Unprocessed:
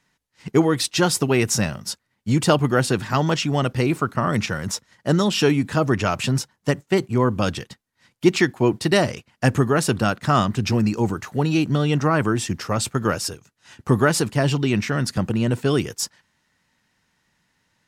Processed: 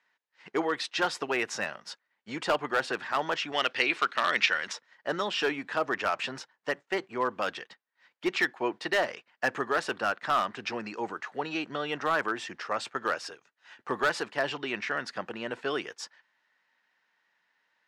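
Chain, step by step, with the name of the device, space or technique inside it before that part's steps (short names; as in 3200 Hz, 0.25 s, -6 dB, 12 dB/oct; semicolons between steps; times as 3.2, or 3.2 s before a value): megaphone (BPF 570–3400 Hz; bell 1700 Hz +4 dB 0.34 oct; hard clip -15 dBFS, distortion -15 dB); 3.52–4.73 weighting filter D; gain -4 dB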